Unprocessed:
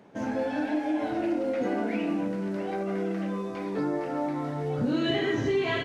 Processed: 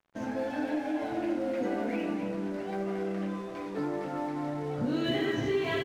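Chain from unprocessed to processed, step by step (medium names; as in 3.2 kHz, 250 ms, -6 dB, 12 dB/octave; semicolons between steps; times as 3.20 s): crossover distortion -48 dBFS; echo from a far wall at 46 m, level -7 dB; trim -3 dB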